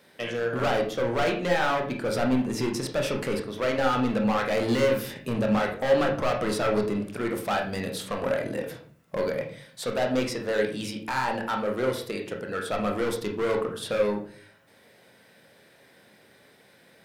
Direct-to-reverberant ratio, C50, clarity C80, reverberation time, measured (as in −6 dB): 1.5 dB, 8.0 dB, 12.5 dB, 0.45 s